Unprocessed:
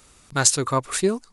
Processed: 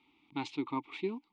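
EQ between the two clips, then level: vowel filter u; resonant low-pass 3.4 kHz, resonance Q 3.5; 0.0 dB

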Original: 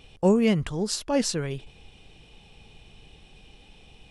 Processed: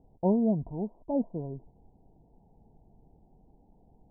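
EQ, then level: dynamic bell 660 Hz, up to +6 dB, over -44 dBFS, Q 4.4; rippled Chebyshev low-pass 980 Hz, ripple 6 dB; -3.0 dB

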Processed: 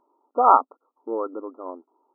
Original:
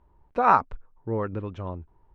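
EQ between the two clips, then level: dynamic bell 720 Hz, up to +3 dB, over -27 dBFS, Q 1.2; brick-wall FIR band-pass 240–1400 Hz; +2.0 dB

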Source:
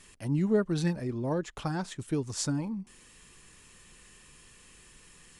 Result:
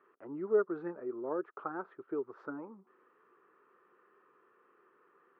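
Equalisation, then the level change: resonant high-pass 390 Hz, resonance Q 4.1; four-pole ladder low-pass 1.4 kHz, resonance 75%; 0.0 dB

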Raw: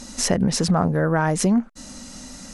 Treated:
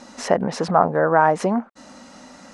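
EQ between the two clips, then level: dynamic bell 820 Hz, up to +5 dB, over -32 dBFS, Q 0.91; band-pass filter 870 Hz, Q 0.7; +4.0 dB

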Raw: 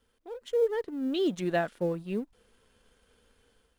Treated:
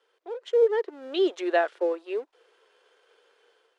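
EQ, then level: elliptic high-pass 370 Hz, stop band 50 dB; distance through air 98 m; +6.5 dB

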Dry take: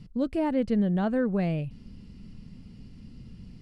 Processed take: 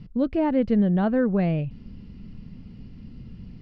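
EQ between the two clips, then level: distance through air 190 m; +4.5 dB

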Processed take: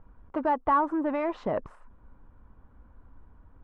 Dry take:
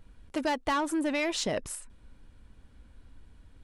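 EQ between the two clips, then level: resonant low-pass 1.1 kHz, resonance Q 2.4; 0.0 dB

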